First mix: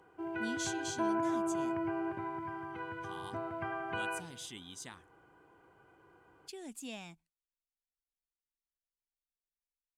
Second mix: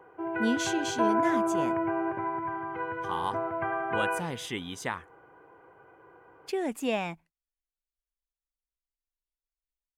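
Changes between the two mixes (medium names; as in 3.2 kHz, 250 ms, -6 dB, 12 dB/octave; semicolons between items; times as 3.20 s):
speech +10.5 dB; master: add ten-band graphic EQ 125 Hz +3 dB, 500 Hz +10 dB, 1 kHz +6 dB, 2 kHz +7 dB, 4 kHz -5 dB, 8 kHz -8 dB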